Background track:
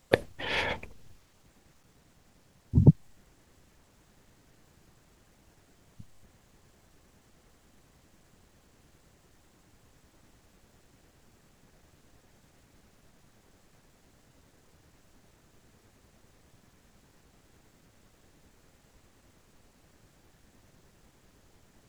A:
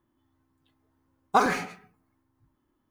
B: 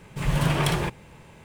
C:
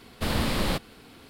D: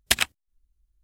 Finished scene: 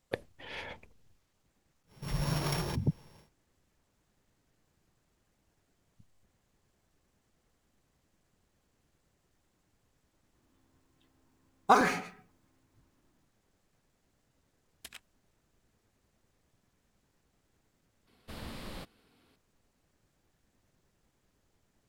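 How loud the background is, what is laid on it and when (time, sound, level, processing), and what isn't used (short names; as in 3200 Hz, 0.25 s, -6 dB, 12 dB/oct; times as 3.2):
background track -12.5 dB
1.86 add B -9.5 dB, fades 0.10 s + sample sorter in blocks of 8 samples
10.35 add A -1.5 dB
14.74 add D -14.5 dB + compressor 4:1, threshold -31 dBFS
18.07 replace with C -17.5 dB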